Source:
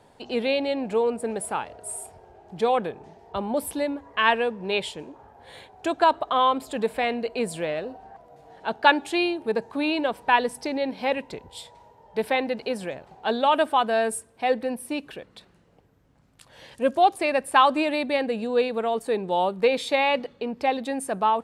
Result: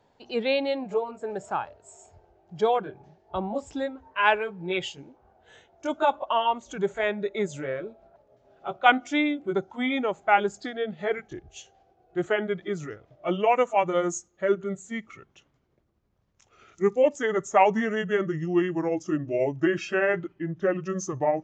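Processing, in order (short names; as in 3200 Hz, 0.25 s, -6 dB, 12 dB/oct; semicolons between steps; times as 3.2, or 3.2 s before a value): gliding pitch shift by -6.5 st starting unshifted; downsampling 16000 Hz; spectral noise reduction 9 dB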